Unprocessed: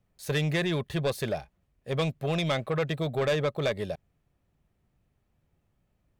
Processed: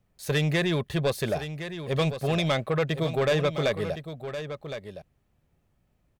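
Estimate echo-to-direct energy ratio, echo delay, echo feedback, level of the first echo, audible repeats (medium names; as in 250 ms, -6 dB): -10.5 dB, 1064 ms, no regular repeats, -10.5 dB, 1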